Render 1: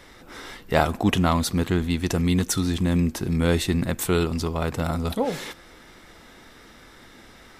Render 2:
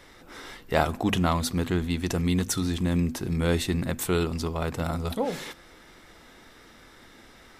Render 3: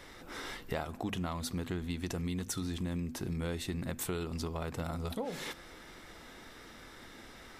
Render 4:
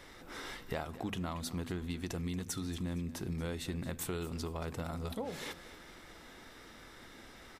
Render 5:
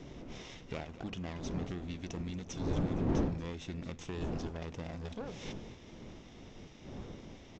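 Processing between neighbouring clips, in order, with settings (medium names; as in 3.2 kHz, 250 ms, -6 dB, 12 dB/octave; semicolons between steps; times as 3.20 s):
hum notches 50/100/150/200/250 Hz; trim -3 dB
compression 6:1, threshold -34 dBFS, peak gain reduction 16 dB
feedback delay 231 ms, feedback 34%, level -16 dB; trim -2 dB
comb filter that takes the minimum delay 0.34 ms; wind noise 300 Hz -38 dBFS; resampled via 16 kHz; trim -3 dB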